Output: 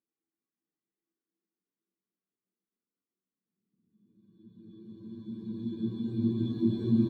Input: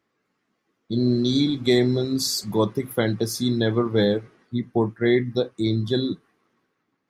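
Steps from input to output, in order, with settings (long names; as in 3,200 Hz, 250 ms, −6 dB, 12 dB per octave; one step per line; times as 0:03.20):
in parallel at −11 dB: decimation without filtering 33×
on the sum: mains-hum notches 50/100/150/200/250/300/350/400/450 Hz
soft clipping −15 dBFS, distortion −15 dB
on a send: single-tap delay 237 ms −7 dB
on the sum: extreme stretch with random phases 28×, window 0.25 s, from 0:00.67
every bin expanded away from the loudest bin 1.5 to 1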